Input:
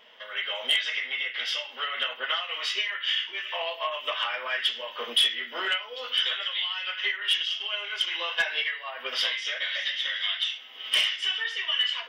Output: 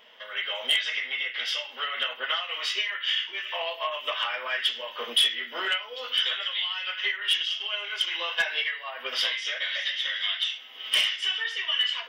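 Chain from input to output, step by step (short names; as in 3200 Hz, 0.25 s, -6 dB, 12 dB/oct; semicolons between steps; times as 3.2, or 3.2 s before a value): high shelf 9900 Hz +4.5 dB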